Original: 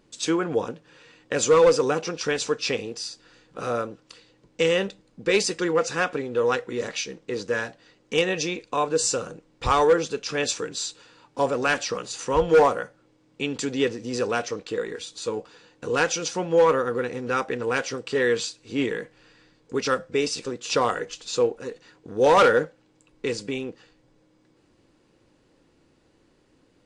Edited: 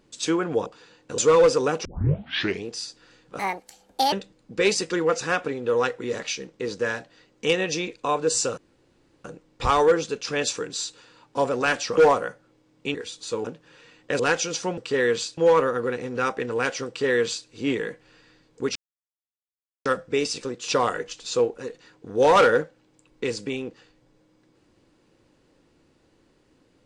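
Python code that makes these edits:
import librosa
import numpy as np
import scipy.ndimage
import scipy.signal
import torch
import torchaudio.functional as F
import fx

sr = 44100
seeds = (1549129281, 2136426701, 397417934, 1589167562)

y = fx.edit(x, sr, fx.swap(start_s=0.66, length_s=0.75, other_s=15.39, other_length_s=0.52),
    fx.tape_start(start_s=2.08, length_s=0.8),
    fx.speed_span(start_s=3.62, length_s=1.19, speed=1.62),
    fx.insert_room_tone(at_s=9.26, length_s=0.67),
    fx.cut(start_s=11.99, length_s=0.53),
    fx.cut(start_s=13.49, length_s=1.4),
    fx.duplicate(start_s=17.99, length_s=0.6, to_s=16.49),
    fx.insert_silence(at_s=19.87, length_s=1.1), tone=tone)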